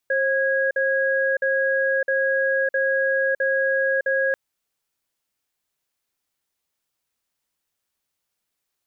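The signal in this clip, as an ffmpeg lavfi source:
-f lavfi -i "aevalsrc='0.0891*(sin(2*PI*536*t)+sin(2*PI*1650*t))*clip(min(mod(t,0.66),0.61-mod(t,0.66))/0.005,0,1)':d=4.24:s=44100"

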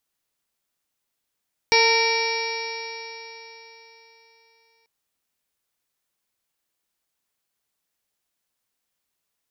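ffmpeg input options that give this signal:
-f lavfi -i "aevalsrc='0.1*pow(10,-3*t/3.79)*sin(2*PI*453.45*t)+0.0944*pow(10,-3*t/3.79)*sin(2*PI*909.62*t)+0.0126*pow(10,-3*t/3.79)*sin(2*PI*1371.18*t)+0.0447*pow(10,-3*t/3.79)*sin(2*PI*1840.76*t)+0.133*pow(10,-3*t/3.79)*sin(2*PI*2320.93*t)+0.0237*pow(10,-3*t/3.79)*sin(2*PI*2814.15*t)+0.0158*pow(10,-3*t/3.79)*sin(2*PI*3322.75*t)+0.0398*pow(10,-3*t/3.79)*sin(2*PI*3848.95*t)+0.0562*pow(10,-3*t/3.79)*sin(2*PI*4394.85*t)+0.0447*pow(10,-3*t/3.79)*sin(2*PI*4962.37*t)+0.0891*pow(10,-3*t/3.79)*sin(2*PI*5553.31*t)':d=3.14:s=44100"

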